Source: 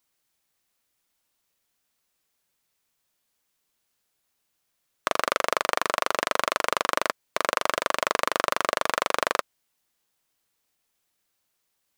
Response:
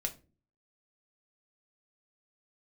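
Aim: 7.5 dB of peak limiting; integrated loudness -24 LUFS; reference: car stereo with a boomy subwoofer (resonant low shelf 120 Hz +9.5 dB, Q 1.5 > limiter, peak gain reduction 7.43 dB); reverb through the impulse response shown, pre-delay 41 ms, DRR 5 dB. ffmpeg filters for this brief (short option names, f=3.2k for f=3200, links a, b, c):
-filter_complex "[0:a]alimiter=limit=-9.5dB:level=0:latency=1,asplit=2[a][b];[1:a]atrim=start_sample=2205,adelay=41[c];[b][c]afir=irnorm=-1:irlink=0,volume=-6.5dB[d];[a][d]amix=inputs=2:normalize=0,lowshelf=f=120:t=q:w=1.5:g=9.5,volume=13.5dB,alimiter=limit=-3.5dB:level=0:latency=1"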